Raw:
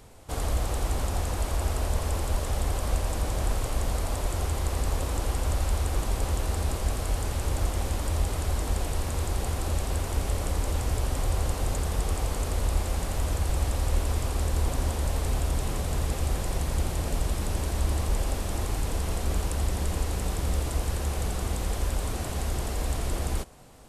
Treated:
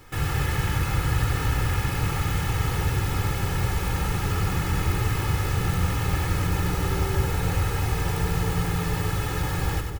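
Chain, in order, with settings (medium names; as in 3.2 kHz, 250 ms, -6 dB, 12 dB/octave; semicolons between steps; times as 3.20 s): comb 5.6 ms, depth 79%; wide varispeed 2.39×; two-band feedback delay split 690 Hz, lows 181 ms, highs 95 ms, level -5.5 dB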